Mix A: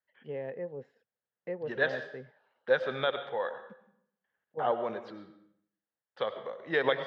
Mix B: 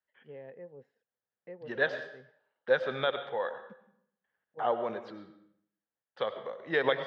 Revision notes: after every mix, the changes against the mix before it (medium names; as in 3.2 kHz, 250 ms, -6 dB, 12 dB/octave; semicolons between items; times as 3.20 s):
first voice -9.0 dB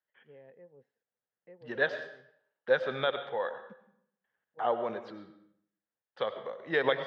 first voice -7.5 dB